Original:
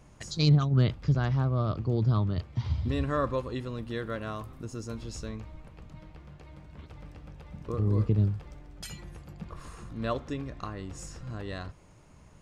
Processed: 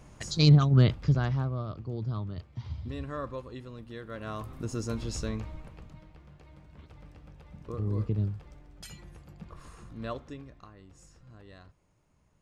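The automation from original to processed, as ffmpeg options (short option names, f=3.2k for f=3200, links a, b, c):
-af "volume=15.5dB,afade=t=out:st=0.86:d=0.8:silence=0.281838,afade=t=in:st=4.08:d=0.61:silence=0.237137,afade=t=out:st=5.45:d=0.59:silence=0.354813,afade=t=out:st=9.98:d=0.69:silence=0.334965"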